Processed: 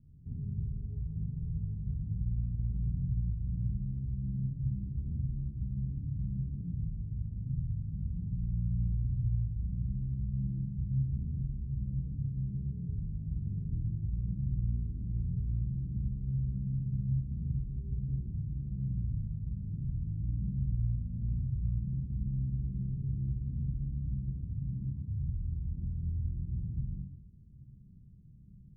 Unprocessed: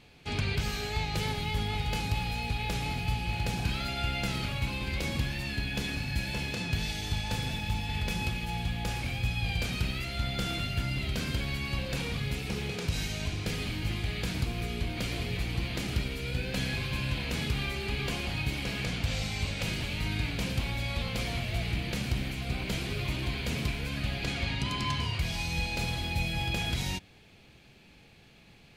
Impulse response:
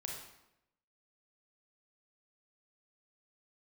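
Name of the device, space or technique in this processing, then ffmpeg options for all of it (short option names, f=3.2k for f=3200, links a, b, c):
club heard from the street: -filter_complex "[0:a]alimiter=level_in=4.5dB:limit=-24dB:level=0:latency=1:release=319,volume=-4.5dB,lowpass=f=200:w=0.5412,lowpass=f=200:w=1.3066[a];[1:a]atrim=start_sample=2205[b];[a][b]afir=irnorm=-1:irlink=0,volume=5dB"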